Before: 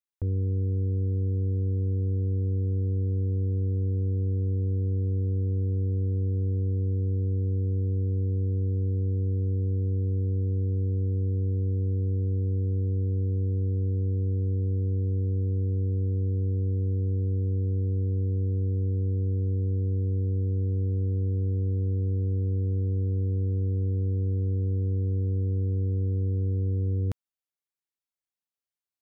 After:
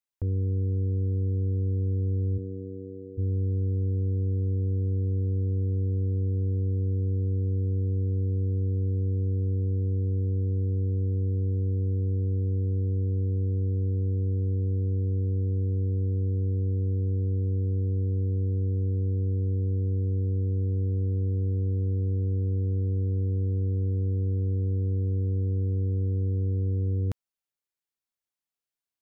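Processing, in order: 2.37–3.17 s: high-pass 150 Hz -> 400 Hz 12 dB/octave

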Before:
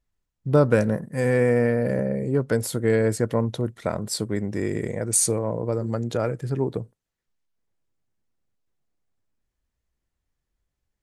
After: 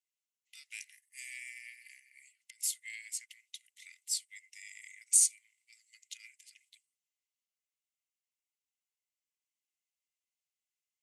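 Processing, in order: 1.98–2.71 s: compressor with a negative ratio -26 dBFS, ratio -0.5; rippled Chebyshev high-pass 2 kHz, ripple 6 dB; trim -2 dB

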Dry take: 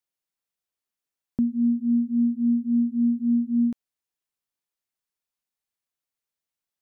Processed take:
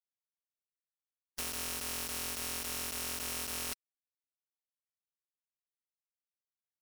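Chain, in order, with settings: bit-reversed sample order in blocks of 256 samples; peaking EQ 300 Hz +10.5 dB 1.4 oct; comb 4.4 ms, depth 54%; waveshaping leveller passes 5; peak limiter -21.5 dBFS, peak gain reduction 10.5 dB; power-law waveshaper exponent 3; distance through air 51 m; bit crusher 10-bit; spectrum-flattening compressor 4:1

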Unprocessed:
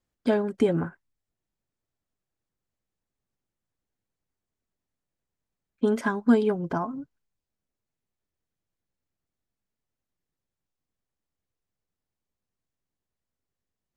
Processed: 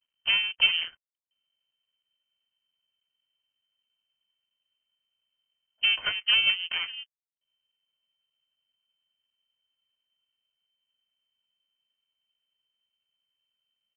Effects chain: comb 2.4 ms, depth 51%; half-wave rectifier; frequency inversion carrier 3.1 kHz

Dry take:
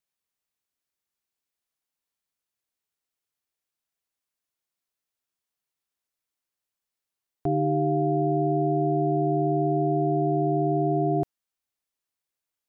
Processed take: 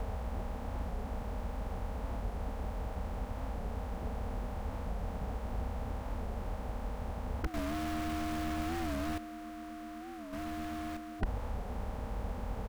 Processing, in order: spectral levelling over time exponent 0.2; high-pass 49 Hz 12 dB/octave; spectral gate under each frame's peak -10 dB weak; 10.33–10.97 s: waveshaping leveller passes 3; delay 138 ms -22.5 dB; 7.55–9.18 s: waveshaping leveller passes 5; bass shelf 77 Hz +10.5 dB; wavefolder -35 dBFS; bass shelf 160 Hz +11 dB; warped record 45 rpm, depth 160 cents; trim +6 dB

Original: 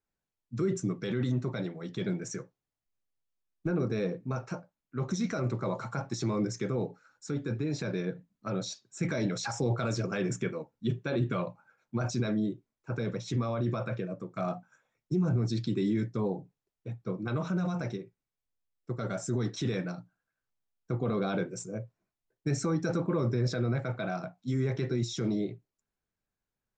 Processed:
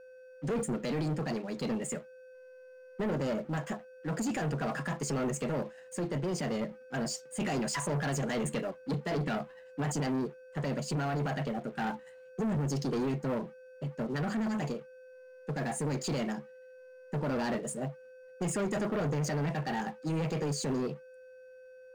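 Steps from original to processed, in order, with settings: whistle 420 Hz -50 dBFS; tape speed +22%; waveshaping leveller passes 3; trim -8 dB

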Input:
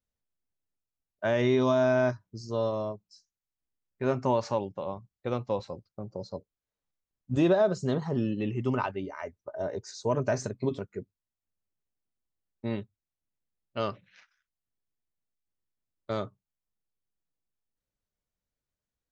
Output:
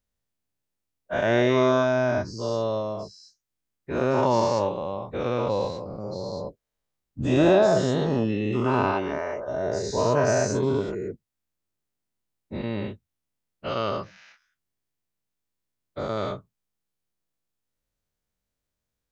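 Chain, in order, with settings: every event in the spectrogram widened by 240 ms; 13.89–16.17 s: dynamic bell 2.7 kHz, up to -5 dB, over -48 dBFS, Q 1.2

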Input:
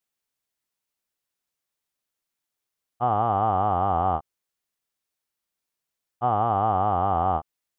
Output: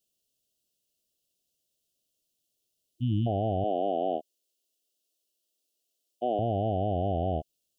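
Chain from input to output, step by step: Chebyshev band-stop 660–2800 Hz, order 4; 2.83–3.25 s: spectral replace 330–2000 Hz before; 3.64–6.39 s: high-pass 260 Hz 24 dB/octave; peak limiter -25.5 dBFS, peak gain reduction 5.5 dB; trim +6 dB

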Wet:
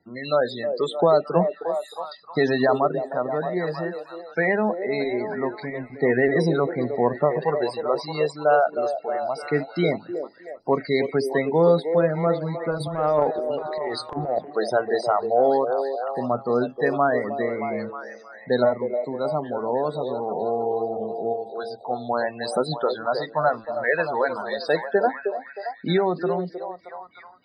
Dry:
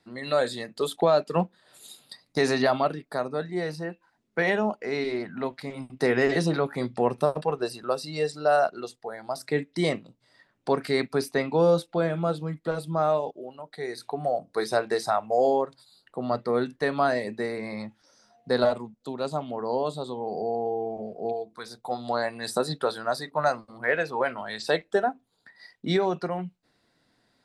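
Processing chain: loudest bins only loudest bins 32; 12.77–14.39 s: transient shaper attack -12 dB, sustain +11 dB; repeats whose band climbs or falls 312 ms, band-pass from 470 Hz, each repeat 0.7 oct, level -5 dB; trim +3 dB

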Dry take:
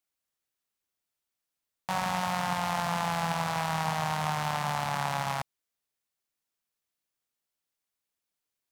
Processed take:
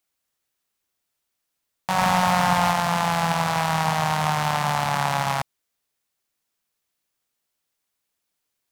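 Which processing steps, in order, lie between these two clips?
1.98–2.72 s: waveshaping leveller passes 1; trim +7.5 dB

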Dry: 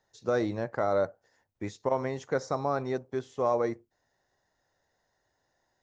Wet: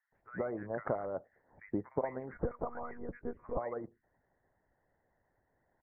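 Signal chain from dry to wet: compression 2:1, threshold -40 dBFS, peak gain reduction 10 dB; 2.21–3.46 s: monotone LPC vocoder at 8 kHz 240 Hz; bass shelf 240 Hz +6 dB; bands offset in time highs, lows 120 ms, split 1.4 kHz; harmonic-percussive split harmonic -14 dB; dynamic bell 630 Hz, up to +3 dB, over -49 dBFS, Q 1.3; steep low-pass 2.1 kHz 72 dB/octave; 0.87–1.68 s: swell ahead of each attack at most 110 dB/s; trim +4 dB

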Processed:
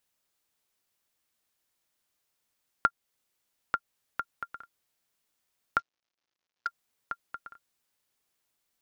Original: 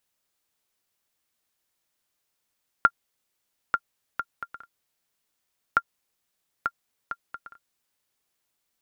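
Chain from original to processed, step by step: 5.79–6.67 s: CVSD coder 32 kbps; in parallel at 0 dB: compression, threshold -29 dBFS, peak gain reduction 14 dB; on the sum: trim -7 dB

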